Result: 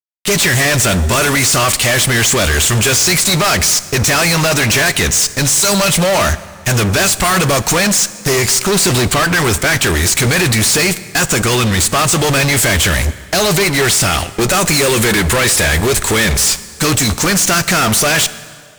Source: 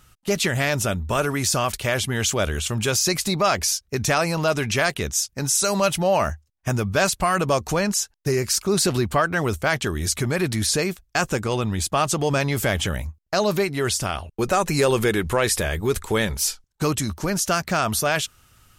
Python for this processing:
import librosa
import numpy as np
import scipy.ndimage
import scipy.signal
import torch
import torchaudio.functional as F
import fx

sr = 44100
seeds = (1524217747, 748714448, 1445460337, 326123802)

y = fx.graphic_eq(x, sr, hz=(2000, 4000, 8000), db=(8, 5, 12))
y = fx.fuzz(y, sr, gain_db=34.0, gate_db=-36.0)
y = fx.rev_plate(y, sr, seeds[0], rt60_s=2.0, hf_ratio=0.8, predelay_ms=0, drr_db=14.5)
y = F.gain(torch.from_numpy(y), 2.0).numpy()